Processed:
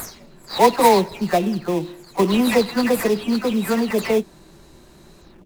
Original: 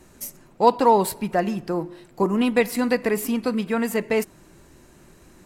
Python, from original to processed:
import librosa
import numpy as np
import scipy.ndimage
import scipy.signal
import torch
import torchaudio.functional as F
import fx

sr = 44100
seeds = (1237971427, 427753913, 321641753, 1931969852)

p1 = fx.spec_delay(x, sr, highs='early', ms=238)
p2 = fx.peak_eq(p1, sr, hz=4100.0, db=10.5, octaves=0.6)
p3 = fx.sample_hold(p2, sr, seeds[0], rate_hz=3000.0, jitter_pct=20)
y = p2 + F.gain(torch.from_numpy(p3), -4.5).numpy()